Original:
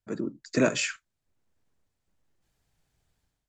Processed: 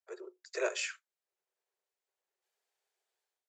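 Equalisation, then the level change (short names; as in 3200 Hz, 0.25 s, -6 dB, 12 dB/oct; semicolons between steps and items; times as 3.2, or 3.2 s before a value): Chebyshev high-pass 360 Hz, order 10; -7.0 dB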